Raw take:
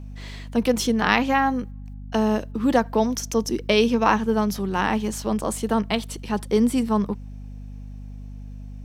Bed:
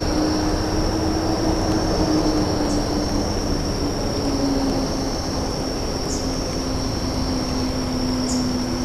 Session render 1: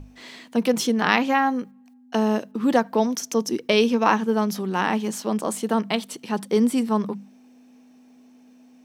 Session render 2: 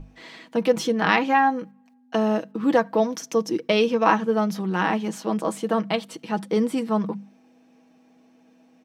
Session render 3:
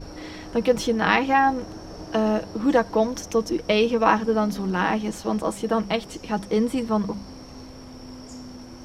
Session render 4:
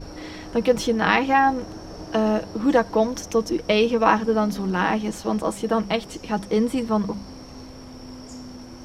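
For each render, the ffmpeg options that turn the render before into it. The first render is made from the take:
-af "bandreject=f=50:t=h:w=6,bandreject=f=100:t=h:w=6,bandreject=f=150:t=h:w=6,bandreject=f=200:t=h:w=6"
-af "highshelf=f=5300:g=-11.5,aecho=1:1:6.2:0.53"
-filter_complex "[1:a]volume=0.119[s0];[0:a][s0]amix=inputs=2:normalize=0"
-af "volume=1.12,alimiter=limit=0.708:level=0:latency=1"

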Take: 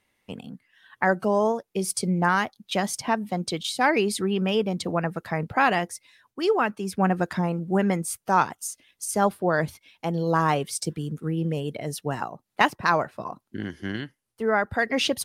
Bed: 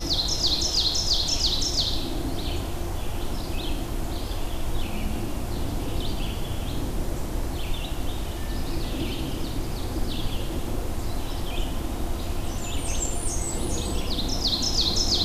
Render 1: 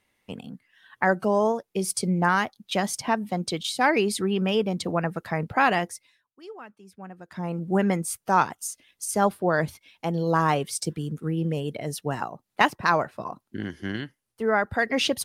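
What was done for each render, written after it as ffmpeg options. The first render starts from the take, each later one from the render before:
-filter_complex "[0:a]asplit=3[s0][s1][s2];[s0]atrim=end=6.25,asetpts=PTS-STARTPTS,afade=t=out:st=5.88:d=0.37:silence=0.105925[s3];[s1]atrim=start=6.25:end=7.27,asetpts=PTS-STARTPTS,volume=0.106[s4];[s2]atrim=start=7.27,asetpts=PTS-STARTPTS,afade=t=in:d=0.37:silence=0.105925[s5];[s3][s4][s5]concat=n=3:v=0:a=1"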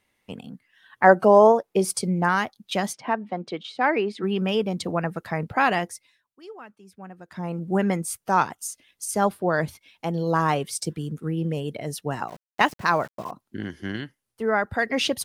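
-filter_complex "[0:a]asettb=1/sr,asplit=3[s0][s1][s2];[s0]atrim=end=1.044[s3];[s1]atrim=start=1.04:end=1.99,asetpts=PTS-STARTPTS,afade=t=in:d=0.004:c=qsin,afade=t=out:st=0.946:d=0.004:c=qsin,equalizer=f=690:t=o:w=2.7:g=9.5[s4];[s2]atrim=start=1.986[s5];[s3][s4]acrossfade=d=0.004:c1=hsin:c2=qsin[s6];[s6][s5]acrossfade=d=0.004:c1=qsin:c2=hsin,asplit=3[s7][s8][s9];[s7]afade=t=out:st=2.92:d=0.02[s10];[s8]highpass=240,lowpass=2400,afade=t=in:st=2.92:d=0.02,afade=t=out:st=4.22:d=0.02[s11];[s9]afade=t=in:st=4.22:d=0.02[s12];[s10][s11][s12]amix=inputs=3:normalize=0,asettb=1/sr,asplit=3[s13][s14][s15];[s13]atrim=end=12.284[s16];[s14]atrim=start=12.28:end=13.31,asetpts=PTS-STARTPTS,afade=t=in:d=0.004:c=qsin,afade=t=out:st=1.026:d=0.004:c=qsin,aeval=exprs='val(0)*gte(abs(val(0)),0.00794)':c=same[s17];[s15]atrim=start=13.306[s18];[s16][s17]acrossfade=d=0.004:c1=hsin:c2=qsin[s19];[s19][s18]acrossfade=d=0.004:c1=qsin:c2=hsin"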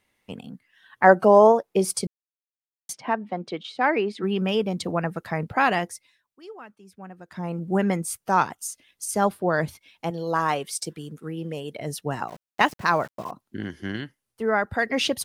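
-filter_complex "[0:a]asettb=1/sr,asplit=3[s0][s1][s2];[s0]atrim=end=10.104[s3];[s1]atrim=start=10.1:end=11.8,asetpts=PTS-STARTPTS,afade=t=in:d=0.004:c=qsin,afade=t=out:st=1.696:d=0.004:c=qsin,lowshelf=f=240:g=-11.5[s4];[s2]atrim=start=11.796[s5];[s3][s4]acrossfade=d=0.004:c1=hsin:c2=qsin[s6];[s6][s5]acrossfade=d=0.004:c1=qsin:c2=hsin,asplit=3[s7][s8][s9];[s7]atrim=end=2.07,asetpts=PTS-STARTPTS,afade=t=out:st=2.066:d=0.004:c=hsin[s10];[s8]atrim=start=2.07:end=2.89,asetpts=PTS-STARTPTS,volume=0[s11];[s9]atrim=start=2.89,asetpts=PTS-STARTPTS,afade=t=in:d=0.004:c=hsin[s12];[s10][s11][s12]concat=n=3:v=0:a=1"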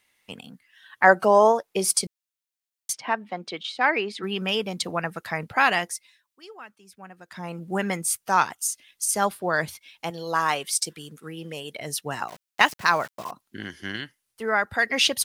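-af "tiltshelf=f=970:g=-6.5"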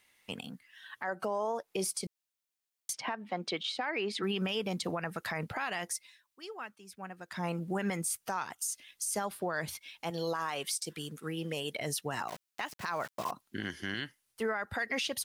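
-af "acompressor=threshold=0.0562:ratio=10,alimiter=limit=0.0631:level=0:latency=1:release=56"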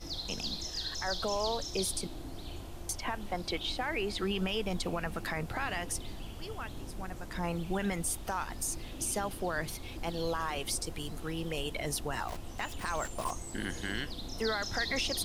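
-filter_complex "[1:a]volume=0.188[s0];[0:a][s0]amix=inputs=2:normalize=0"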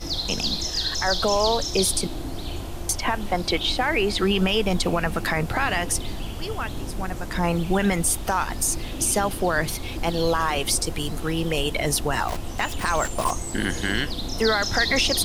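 -af "volume=3.76"

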